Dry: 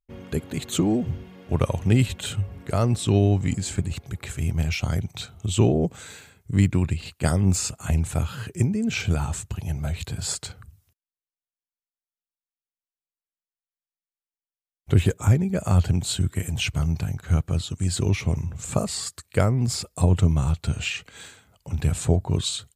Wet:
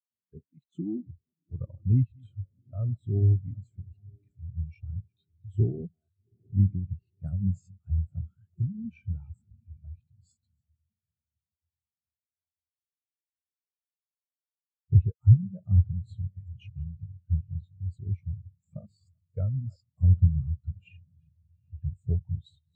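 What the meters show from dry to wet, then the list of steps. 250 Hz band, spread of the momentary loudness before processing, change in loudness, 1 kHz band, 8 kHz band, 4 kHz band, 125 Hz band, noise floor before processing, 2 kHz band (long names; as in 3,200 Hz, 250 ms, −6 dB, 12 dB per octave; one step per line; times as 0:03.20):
−11.5 dB, 10 LU, −4.5 dB, below −30 dB, below −40 dB, below −35 dB, −4.0 dB, below −85 dBFS, below −30 dB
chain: delay that plays each chunk backwards 190 ms, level −12 dB
noise reduction from a noise print of the clip's start 9 dB
low-pass filter 9,700 Hz
feedback delay with all-pass diffusion 792 ms, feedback 54%, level −13.5 dB
every bin expanded away from the loudest bin 2.5 to 1
level −2.5 dB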